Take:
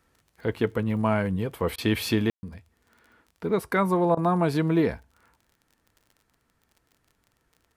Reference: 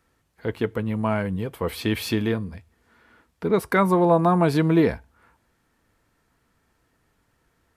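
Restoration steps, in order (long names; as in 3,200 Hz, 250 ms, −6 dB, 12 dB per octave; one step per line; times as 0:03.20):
click removal
ambience match 0:02.30–0:02.43
repair the gap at 0:01.76/0:04.15, 20 ms
level correction +4 dB, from 0:02.38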